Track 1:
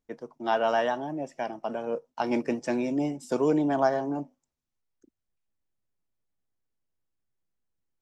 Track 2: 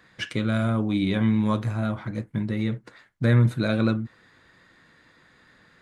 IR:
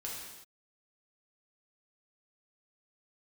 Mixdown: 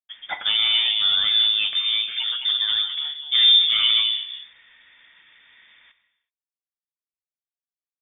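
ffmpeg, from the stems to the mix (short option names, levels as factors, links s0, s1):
-filter_complex "[0:a]aecho=1:1:6.1:0.57,acrusher=bits=8:mix=0:aa=0.000001,volume=0.596,asplit=3[s0][s1][s2];[s1]volume=0.237[s3];[s2]volume=0.562[s4];[1:a]asoftclip=type=tanh:threshold=0.188,adelay=100,volume=1.26,asplit=2[s5][s6];[s6]volume=0.398[s7];[2:a]atrim=start_sample=2205[s8];[s3][s7]amix=inputs=2:normalize=0[s9];[s9][s8]afir=irnorm=-1:irlink=0[s10];[s4]aecho=0:1:213:1[s11];[s0][s5][s10][s11]amix=inputs=4:normalize=0,lowpass=f=3100:t=q:w=0.5098,lowpass=f=3100:t=q:w=0.6013,lowpass=f=3100:t=q:w=0.9,lowpass=f=3100:t=q:w=2.563,afreqshift=-3700"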